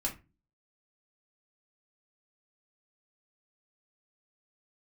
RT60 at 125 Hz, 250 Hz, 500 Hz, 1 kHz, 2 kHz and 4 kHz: 0.50, 0.45, 0.30, 0.25, 0.25, 0.20 s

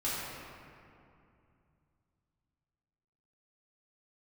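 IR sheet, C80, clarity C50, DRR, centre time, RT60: -1.0 dB, -3.0 dB, -10.5 dB, 0.154 s, 2.6 s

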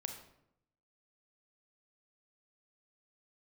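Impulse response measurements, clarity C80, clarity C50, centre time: 10.0 dB, 7.0 dB, 22 ms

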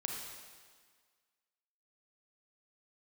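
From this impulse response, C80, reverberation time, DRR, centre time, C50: 3.0 dB, 1.7 s, 0.0 dB, 74 ms, 1.5 dB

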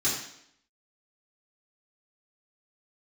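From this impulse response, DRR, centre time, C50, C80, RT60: -8.5 dB, 45 ms, 3.5 dB, 6.5 dB, 0.70 s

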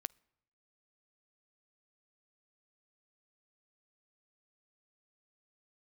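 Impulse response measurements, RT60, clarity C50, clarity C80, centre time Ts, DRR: 0.80 s, 28.0 dB, 31.0 dB, 1 ms, 24.0 dB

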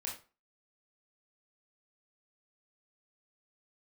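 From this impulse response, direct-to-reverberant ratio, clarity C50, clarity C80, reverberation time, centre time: -3.5 dB, 7.0 dB, 13.5 dB, 0.35 s, 28 ms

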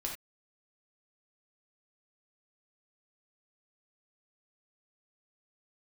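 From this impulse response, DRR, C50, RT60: -1.5 dB, 5.0 dB, not exponential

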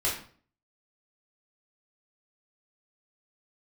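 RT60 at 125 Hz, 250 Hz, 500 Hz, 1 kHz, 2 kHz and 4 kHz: 0.55, 0.55, 0.50, 0.45, 0.40, 0.35 s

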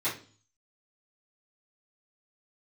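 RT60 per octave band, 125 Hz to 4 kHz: 0.70, 0.55, 0.40, 0.35, 0.35, 0.45 s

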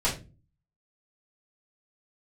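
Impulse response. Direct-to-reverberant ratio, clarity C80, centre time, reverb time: -10.0 dB, 15.5 dB, 23 ms, 0.30 s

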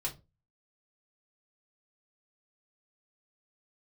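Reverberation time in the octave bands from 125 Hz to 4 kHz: 0.45, 0.35, 0.30, 0.25, 0.20, 0.20 s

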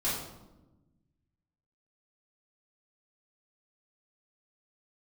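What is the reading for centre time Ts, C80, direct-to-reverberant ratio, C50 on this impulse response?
59 ms, 5.0 dB, -11.0 dB, 1.5 dB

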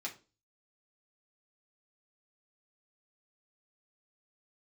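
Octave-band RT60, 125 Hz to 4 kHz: 0.55, 0.40, 0.35, 0.30, 0.25, 0.30 s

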